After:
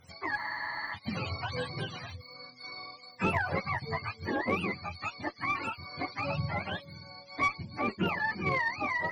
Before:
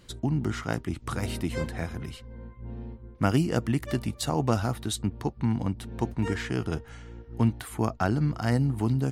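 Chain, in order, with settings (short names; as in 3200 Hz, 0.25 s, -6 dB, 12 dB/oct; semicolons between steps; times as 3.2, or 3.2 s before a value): spectrum mirrored in octaves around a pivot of 510 Hz; added harmonics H 2 -17 dB, 5 -24 dB, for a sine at -13 dBFS; spectral freeze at 0.39, 0.56 s; gain -3.5 dB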